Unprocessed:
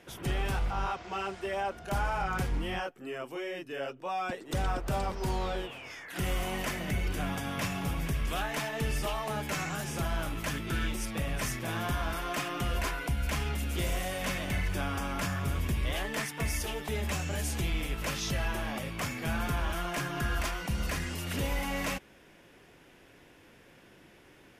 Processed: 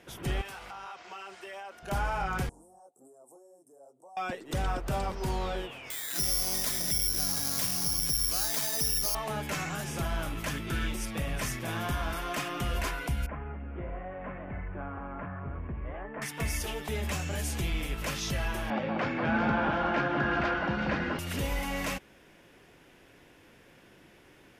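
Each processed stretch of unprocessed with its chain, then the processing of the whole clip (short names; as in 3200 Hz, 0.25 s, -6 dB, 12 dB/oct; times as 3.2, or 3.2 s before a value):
0.41–1.83 HPF 910 Hz 6 dB/oct + notch 3500 Hz, Q 29 + compressor 5:1, threshold -39 dBFS
2.49–4.17 weighting filter ITU-R 468 + compressor 3:1, threshold -48 dBFS + elliptic band-stop 780–8500 Hz, stop band 60 dB
5.9–9.15 careless resampling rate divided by 8×, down filtered, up zero stuff + compressor 2:1, threshold -27 dBFS
13.26–16.22 Gaussian blur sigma 5.7 samples + low shelf 420 Hz -7 dB
18.7–21.19 speaker cabinet 110–4000 Hz, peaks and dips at 220 Hz +6 dB, 320 Hz +7 dB, 530 Hz +8 dB, 830 Hz +8 dB, 1500 Hz +7 dB, 3300 Hz -3 dB + echo with dull and thin repeats by turns 0.186 s, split 1600 Hz, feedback 59%, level -2.5 dB
whole clip: dry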